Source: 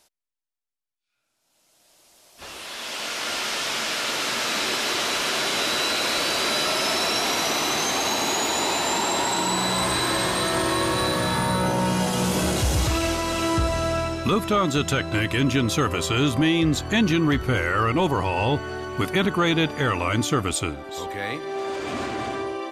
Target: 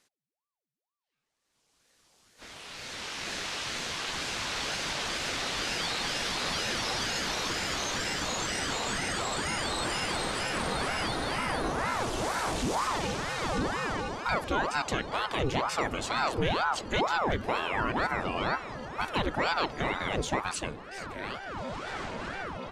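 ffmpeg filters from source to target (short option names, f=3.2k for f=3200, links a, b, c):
-af "lowpass=8.7k,aeval=exprs='val(0)*sin(2*PI*660*n/s+660*0.8/2.1*sin(2*PI*2.1*n/s))':c=same,volume=-5dB"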